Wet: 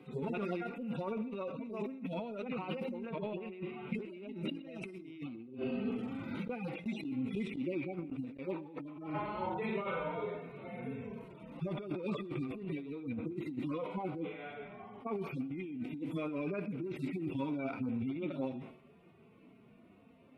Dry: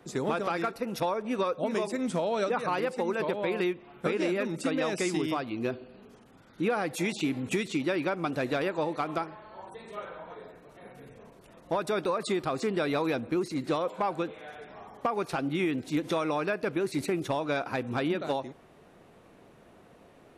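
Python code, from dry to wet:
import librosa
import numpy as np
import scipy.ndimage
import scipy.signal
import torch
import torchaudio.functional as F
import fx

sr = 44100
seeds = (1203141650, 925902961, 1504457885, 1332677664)

p1 = fx.hpss_only(x, sr, part='harmonic')
p2 = fx.doppler_pass(p1, sr, speed_mps=10, closest_m=6.1, pass_at_s=7.4)
p3 = fx.graphic_eq_15(p2, sr, hz=(250, 630, 2500, 6300), db=(8, -3, 11, -7))
p4 = fx.gate_flip(p3, sr, shuts_db=-26.0, range_db=-28)
p5 = fx.over_compress(p4, sr, threshold_db=-55.0, ratio=-1.0)
p6 = fx.high_shelf(p5, sr, hz=2500.0, db=-8.5)
p7 = fx.notch(p6, sr, hz=1700.0, q=5.2)
p8 = p7 + fx.echo_feedback(p7, sr, ms=123, feedback_pct=36, wet_db=-22.0, dry=0)
p9 = fx.sustainer(p8, sr, db_per_s=97.0)
y = p9 * 10.0 ** (14.5 / 20.0)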